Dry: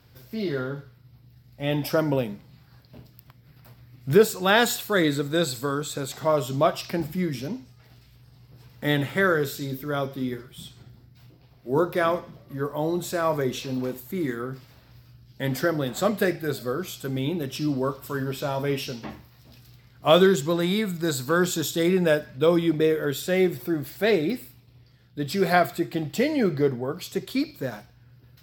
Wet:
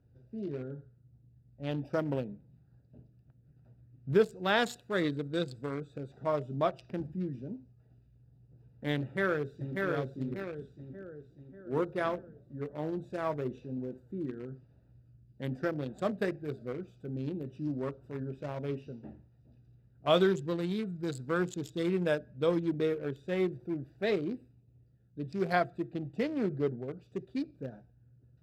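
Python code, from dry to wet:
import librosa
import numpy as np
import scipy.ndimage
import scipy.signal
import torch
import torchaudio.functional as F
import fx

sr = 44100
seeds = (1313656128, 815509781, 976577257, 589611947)

y = fx.echo_throw(x, sr, start_s=9.01, length_s=0.83, ms=590, feedback_pct=55, wet_db=-2.5)
y = fx.wiener(y, sr, points=41)
y = scipy.signal.sosfilt(scipy.signal.bessel(2, 7900.0, 'lowpass', norm='mag', fs=sr, output='sos'), y)
y = y * 10.0 ** (-8.0 / 20.0)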